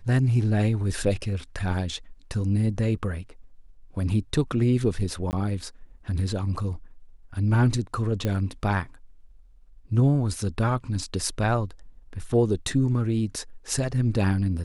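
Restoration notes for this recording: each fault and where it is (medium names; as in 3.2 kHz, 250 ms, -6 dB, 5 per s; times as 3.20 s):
5.31–5.33 s: dropout 19 ms
8.25 s: pop -14 dBFS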